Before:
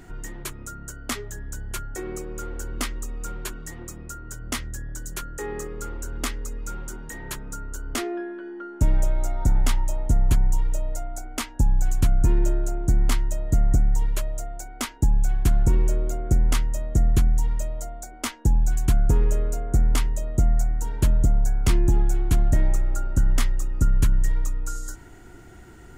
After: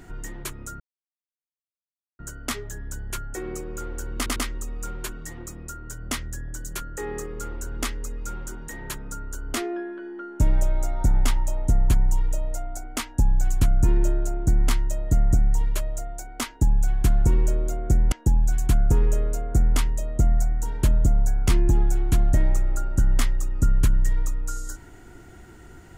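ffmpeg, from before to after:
-filter_complex "[0:a]asplit=5[a][b][c][d][e];[a]atrim=end=0.8,asetpts=PTS-STARTPTS,afade=t=out:st=0.796:d=0.004:c=hsin,apad=pad_dur=1.39[f];[b]atrim=start=0.8:end=2.872,asetpts=PTS-STARTPTS,afade=t=in:d=0.004:c=hsin[g];[c]atrim=start=2.768:end=2.872[h];[d]atrim=start=2.768:end=16.532[i];[e]atrim=start=18.308[j];[f][g]concat=n=2:v=0:a=1[k];[k][h]acrossfade=d=0.004:c1=hsin:c2=hsin[l];[l][i]acrossfade=d=0.004:c1=hsin:c2=hsin[m];[m][j]acrossfade=d=0.004:c1=hsin:c2=hsin"

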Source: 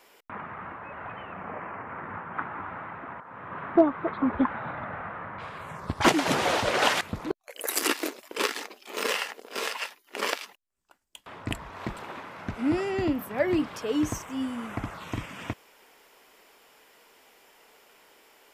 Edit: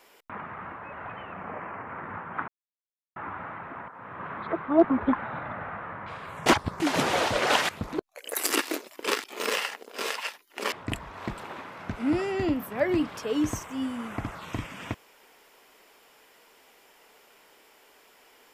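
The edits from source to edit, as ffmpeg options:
-filter_complex "[0:a]asplit=8[a][b][c][d][e][f][g][h];[a]atrim=end=2.48,asetpts=PTS-STARTPTS,afade=t=out:st=2.476:d=0.004:c=hsin,apad=pad_dur=0.68[i];[b]atrim=start=2.48:end=3.712,asetpts=PTS-STARTPTS,afade=t=in:d=0.004:c=hsin[j];[c]atrim=start=3.708:end=4.212,asetpts=PTS-STARTPTS,areverse[k];[d]atrim=start=4.208:end=5.782[l];[e]atrim=start=5.778:end=6.122,asetpts=PTS-STARTPTS,areverse[m];[f]atrim=start=6.118:end=8.562[n];[g]atrim=start=8.808:end=10.292[o];[h]atrim=start=11.308[p];[i][j]concat=n=2:v=0:a=1[q];[q][k]acrossfade=d=0.004:c1=hsin:c2=hsin[r];[r][l]acrossfade=d=0.004:c1=hsin:c2=hsin[s];[s][m]acrossfade=d=0.004:c1=hsin:c2=hsin[t];[t][n]acrossfade=d=0.004:c1=hsin:c2=hsin[u];[u][o]acrossfade=d=0.004:c1=hsin:c2=hsin[v];[v][p]acrossfade=d=0.004:c1=hsin:c2=hsin"

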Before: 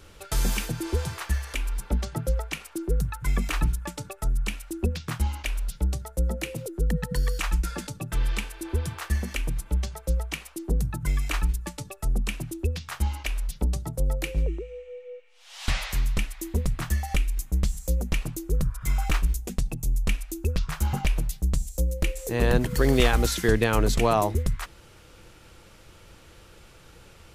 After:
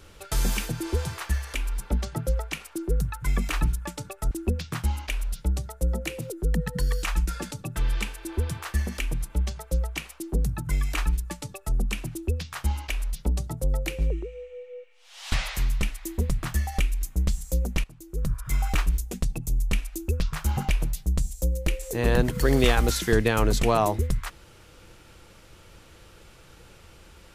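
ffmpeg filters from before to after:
-filter_complex "[0:a]asplit=3[a][b][c];[a]atrim=end=4.312[d];[b]atrim=start=4.668:end=18.2,asetpts=PTS-STARTPTS,afade=t=out:st=13.528:d=0.004:c=hsin:silence=0.133352[e];[c]atrim=start=18.2,asetpts=PTS-STARTPTS,afade=t=in:d=0.48:c=qua:silence=0.133352[f];[e][f]concat=n=2:v=0:a=1[g];[d][g]acrossfade=d=0.004:c1=hsin:c2=hsin"

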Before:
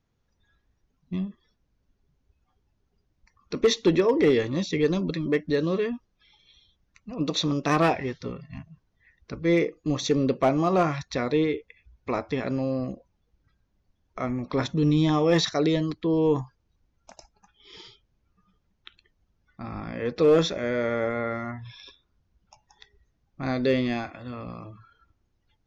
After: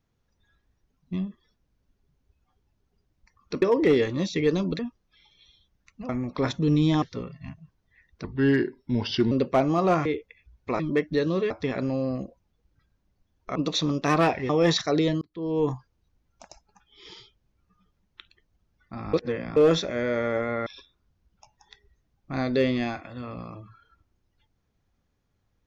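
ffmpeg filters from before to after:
-filter_complex "[0:a]asplit=16[a][b][c][d][e][f][g][h][i][j][k][l][m][n][o][p];[a]atrim=end=3.622[q];[b]atrim=start=3.988:end=5.162[r];[c]atrim=start=5.868:end=7.172[s];[d]atrim=start=14.238:end=15.172[t];[e]atrim=start=8.108:end=9.334[u];[f]atrim=start=9.33:end=10.2,asetpts=PTS-STARTPTS,asetrate=35721,aresample=44100[v];[g]atrim=start=10.196:end=10.942[w];[h]atrim=start=11.448:end=12.192[x];[i]atrim=start=5.158:end=5.872[y];[j]atrim=start=12.188:end=14.242[z];[k]atrim=start=7.168:end=8.112[aa];[l]atrim=start=15.168:end=15.89,asetpts=PTS-STARTPTS,afade=t=out:st=0.718:d=0.004:c=hsin[ab];[m]atrim=start=15.89:end=19.812,asetpts=PTS-STARTPTS,afade=t=in:d=0.52[ac];[n]atrim=start=19.808:end=20.242,asetpts=PTS-STARTPTS,areverse[ad];[o]atrim=start=20.238:end=21.342[ae];[p]atrim=start=21.758[af];[q][r]acrossfade=d=0.004:c1=hsin:c2=hsin[ag];[ag][s]acrossfade=d=0.004:c1=hsin:c2=hsin[ah];[ah][t]acrossfade=d=0.004:c1=hsin:c2=hsin[ai];[ai][u]acrossfade=d=0.004:c1=hsin:c2=hsin[aj];[aj][v]acrossfade=d=0.004:c1=hsin:c2=hsin[ak];[ak][w]acrossfade=d=0.004:c1=hsin:c2=hsin[al];[al][x]acrossfade=d=0.004:c1=hsin:c2=hsin[am];[am][y]acrossfade=d=0.004:c1=hsin:c2=hsin[an];[an][z]acrossfade=d=0.004:c1=hsin:c2=hsin[ao];[ao][aa]acrossfade=d=0.004:c1=hsin:c2=hsin[ap];[ab][ac]concat=n=2:v=0:a=1[aq];[ap][aq]acrossfade=d=0.004:c1=hsin:c2=hsin[ar];[ar][ad]acrossfade=d=0.004:c1=hsin:c2=hsin[as];[as][ae]acrossfade=d=0.004:c1=hsin:c2=hsin[at];[at][af]acrossfade=d=0.004:c1=hsin:c2=hsin"

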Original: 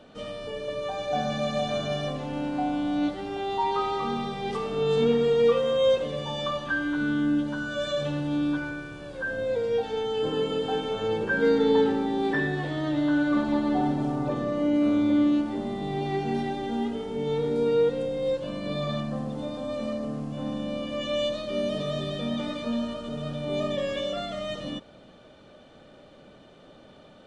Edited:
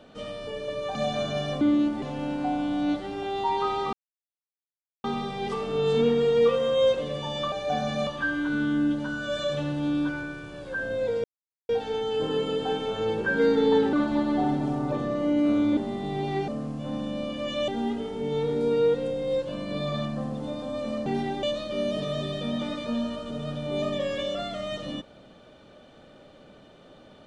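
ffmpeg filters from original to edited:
-filter_complex "[0:a]asplit=14[a][b][c][d][e][f][g][h][i][j][k][l][m][n];[a]atrim=end=0.952[o];[b]atrim=start=1.498:end=2.162[p];[c]atrim=start=15.138:end=15.552[q];[d]atrim=start=2.158:end=4.07,asetpts=PTS-STARTPTS,afade=t=out:st=1.908:d=0.004:c=hsin,apad=pad_dur=1.11[r];[e]atrim=start=4.07:end=6.552,asetpts=PTS-STARTPTS,afade=t=in:d=0.004:c=hsin[s];[f]atrim=start=0.948:end=1.502[t];[g]atrim=start=6.548:end=9.72,asetpts=PTS-STARTPTS,afade=t=out:st=3.168:d=0.004:c=hsin,apad=pad_dur=0.45[u];[h]atrim=start=9.72:end=11.962,asetpts=PTS-STARTPTS,afade=t=in:d=0.004:c=hsin[v];[i]atrim=start=13.298:end=15.142[w];[j]atrim=start=15.548:end=16.262[x];[k]atrim=start=20.008:end=21.212[y];[l]atrim=start=16.628:end=20.012[z];[m]atrim=start=16.258:end=16.632[aa];[n]atrim=start=21.208[ab];[o][p]acrossfade=d=0.004:c1=hsin:c2=hsin[ac];[ac][q]acrossfade=d=0.004:c1=hsin:c2=hsin[ad];[r][s]concat=n=2:v=0:a=1[ae];[ad][ae]acrossfade=d=0.004:c1=hsin:c2=hsin[af];[af][t]acrossfade=d=0.004:c1=hsin:c2=hsin[ag];[u][v]concat=n=2:v=0:a=1[ah];[ag][ah]acrossfade=d=0.004:c1=hsin:c2=hsin[ai];[ai][w]acrossfade=d=0.004:c1=hsin:c2=hsin[aj];[aj][x]acrossfade=d=0.004:c1=hsin:c2=hsin[ak];[ak][y]acrossfade=d=0.004:c1=hsin:c2=hsin[al];[al][z]acrossfade=d=0.004:c1=hsin:c2=hsin[am];[am][aa]acrossfade=d=0.004:c1=hsin:c2=hsin[an];[an][ab]acrossfade=d=0.004:c1=hsin:c2=hsin"

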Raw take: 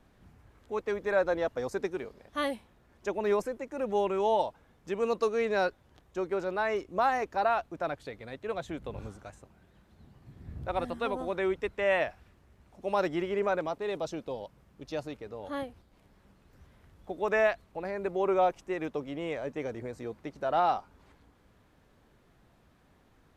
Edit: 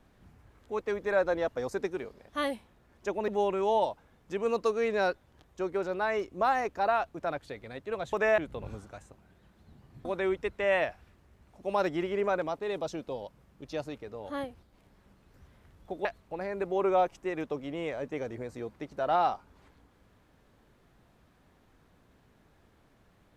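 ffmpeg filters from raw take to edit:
-filter_complex "[0:a]asplit=6[a][b][c][d][e][f];[a]atrim=end=3.282[g];[b]atrim=start=3.848:end=8.702[h];[c]atrim=start=17.238:end=17.492[i];[d]atrim=start=8.698:end=10.372[j];[e]atrim=start=11.238:end=17.242[k];[f]atrim=start=17.488[l];[g][h]acrossfade=d=0.004:c1=hsin:c2=hsin[m];[m][i]acrossfade=d=0.004:c1=hsin:c2=hsin[n];[n][j]acrossfade=d=0.004:c1=hsin:c2=hsin[o];[o][k]acrossfade=d=0.004:c1=hsin:c2=hsin[p];[p][l]acrossfade=d=0.004:c1=hsin:c2=hsin"

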